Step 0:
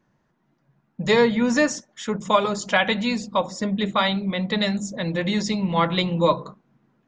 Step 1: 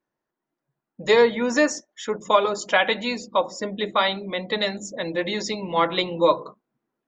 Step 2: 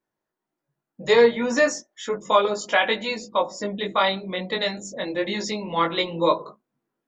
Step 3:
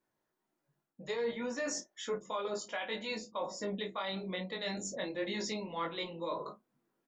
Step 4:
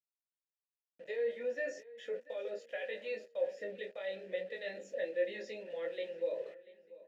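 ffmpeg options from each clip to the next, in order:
-af "afftdn=nr=14:nf=-43,lowshelf=f=250:t=q:w=1.5:g=-9"
-af "flanger=delay=18.5:depth=3.2:speed=0.33,volume=2.5dB"
-filter_complex "[0:a]areverse,acompressor=threshold=-31dB:ratio=6,areverse,alimiter=level_in=3dB:limit=-24dB:level=0:latency=1:release=387,volume=-3dB,asplit=2[a][b];[b]adelay=32,volume=-12dB[c];[a][c]amix=inputs=2:normalize=0"
-filter_complex "[0:a]aeval=exprs='val(0)*gte(abs(val(0)),0.00398)':c=same,asplit=3[a][b][c];[a]bandpass=f=530:t=q:w=8,volume=0dB[d];[b]bandpass=f=1.84k:t=q:w=8,volume=-6dB[e];[c]bandpass=f=2.48k:t=q:w=8,volume=-9dB[f];[d][e][f]amix=inputs=3:normalize=0,asplit=2[g][h];[h]adelay=688,lowpass=f=3.3k:p=1,volume=-18.5dB,asplit=2[i][j];[j]adelay=688,lowpass=f=3.3k:p=1,volume=0.41,asplit=2[k][l];[l]adelay=688,lowpass=f=3.3k:p=1,volume=0.41[m];[g][i][k][m]amix=inputs=4:normalize=0,volume=7dB"

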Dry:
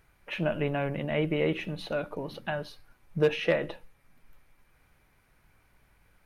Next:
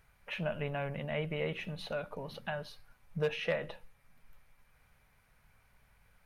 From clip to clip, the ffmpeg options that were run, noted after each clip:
-filter_complex "[0:a]equalizer=f=320:t=o:w=0.45:g=-13.5,asplit=2[a][b];[b]acompressor=threshold=-38dB:ratio=6,volume=-2dB[c];[a][c]amix=inputs=2:normalize=0,volume=-7dB"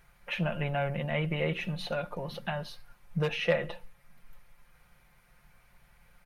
-af "aecho=1:1:5.7:0.56,volume=4dB"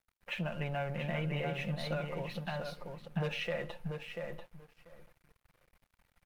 -filter_complex "[0:a]alimiter=limit=-23dB:level=0:latency=1:release=64,asplit=2[a][b];[b]adelay=689,lowpass=f=2.1k:p=1,volume=-4dB,asplit=2[c][d];[d]adelay=689,lowpass=f=2.1k:p=1,volume=0.19,asplit=2[e][f];[f]adelay=689,lowpass=f=2.1k:p=1,volume=0.19[g];[c][e][g]amix=inputs=3:normalize=0[h];[a][h]amix=inputs=2:normalize=0,aeval=exprs='sgn(val(0))*max(abs(val(0))-0.00168,0)':c=same,volume=-3.5dB"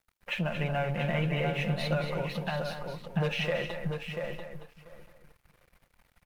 -af "aecho=1:1:228:0.376,volume=5.5dB"

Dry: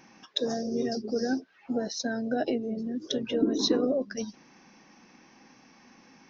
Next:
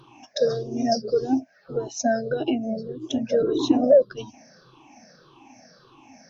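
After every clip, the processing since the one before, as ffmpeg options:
-af "afftfilt=real='re*pow(10,23/40*sin(2*PI*(0.63*log(max(b,1)*sr/1024/100)/log(2)-(-1.7)*(pts-256)/sr)))':imag='im*pow(10,23/40*sin(2*PI*(0.63*log(max(b,1)*sr/1024/100)/log(2)-(-1.7)*(pts-256)/sr)))':win_size=1024:overlap=0.75,equalizer=f=125:t=o:w=0.33:g=12,equalizer=f=200:t=o:w=0.33:g=-8,equalizer=f=630:t=o:w=0.33:g=9,equalizer=f=2k:t=o:w=0.33:g=-10,aeval=exprs='0.531*(cos(1*acos(clip(val(0)/0.531,-1,1)))-cos(1*PI/2))+0.0106*(cos(3*acos(clip(val(0)/0.531,-1,1)))-cos(3*PI/2))':c=same"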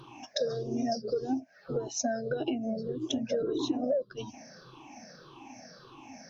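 -af "acompressor=threshold=-31dB:ratio=4,volume=1.5dB"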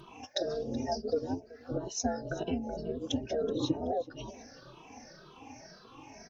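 -filter_complex "[0:a]tremolo=f=170:d=0.824,aecho=1:1:377|754:0.1|0.029,asplit=2[a][b];[b]adelay=2.7,afreqshift=2.1[c];[a][c]amix=inputs=2:normalize=1,volume=5dB"

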